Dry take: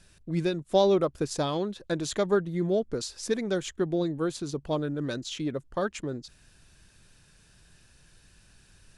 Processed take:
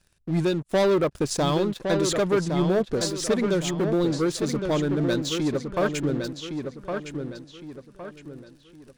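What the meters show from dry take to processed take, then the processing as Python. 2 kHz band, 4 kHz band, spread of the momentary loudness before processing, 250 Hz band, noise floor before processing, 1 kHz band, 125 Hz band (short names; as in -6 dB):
+6.5 dB, +5.5 dB, 9 LU, +6.0 dB, -60 dBFS, +3.5 dB, +6.5 dB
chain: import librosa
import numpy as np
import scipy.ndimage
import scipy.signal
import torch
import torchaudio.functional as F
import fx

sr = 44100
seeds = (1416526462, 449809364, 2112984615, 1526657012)

p1 = fx.leveller(x, sr, passes=3)
p2 = p1 + fx.echo_filtered(p1, sr, ms=1112, feedback_pct=37, hz=4700.0, wet_db=-6, dry=0)
y = F.gain(torch.from_numpy(p2), -4.5).numpy()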